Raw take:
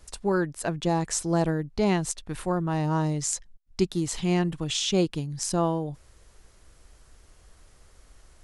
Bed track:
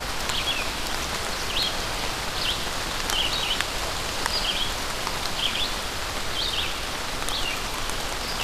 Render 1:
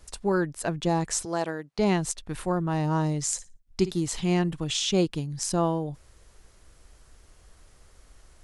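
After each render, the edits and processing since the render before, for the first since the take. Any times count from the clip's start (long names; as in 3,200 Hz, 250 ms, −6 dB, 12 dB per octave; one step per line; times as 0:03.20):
0:01.25–0:01.79: meter weighting curve A
0:03.23–0:03.92: flutter between parallel walls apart 9.7 metres, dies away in 0.24 s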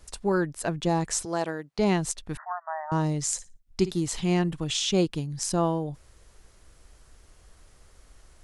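0:02.37–0:02.92: linear-phase brick-wall band-pass 600–2,000 Hz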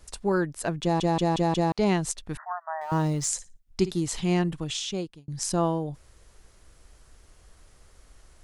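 0:00.82: stutter in place 0.18 s, 5 plays
0:02.81–0:03.29: mu-law and A-law mismatch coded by mu
0:04.50–0:05.28: fade out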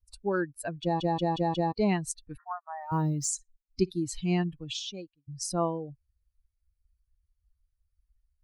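spectral dynamics exaggerated over time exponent 2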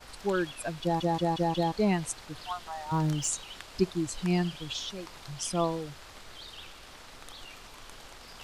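mix in bed track −19.5 dB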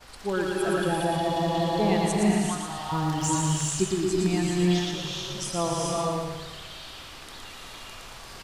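repeating echo 115 ms, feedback 47%, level −4 dB
reverb whose tail is shaped and stops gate 450 ms rising, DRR −1.5 dB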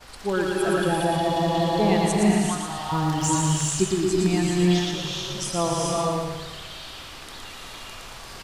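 level +3 dB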